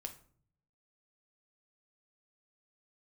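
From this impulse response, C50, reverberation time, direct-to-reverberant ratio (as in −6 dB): 13.0 dB, 0.50 s, 4.0 dB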